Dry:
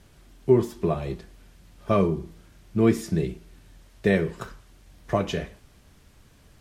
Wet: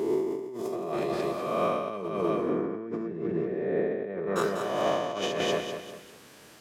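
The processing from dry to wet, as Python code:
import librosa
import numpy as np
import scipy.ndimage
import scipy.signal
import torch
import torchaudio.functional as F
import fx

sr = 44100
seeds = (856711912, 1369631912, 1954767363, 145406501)

y = fx.spec_swells(x, sr, rise_s=1.53)
y = fx.lowpass(y, sr, hz=1100.0, slope=12, at=(2.1, 4.36))
y = fx.echo_feedback(y, sr, ms=197, feedback_pct=39, wet_db=-8.0)
y = fx.over_compress(y, sr, threshold_db=-28.0, ratio=-1.0)
y = scipy.signal.sosfilt(scipy.signal.butter(2, 270.0, 'highpass', fs=sr, output='sos'), y)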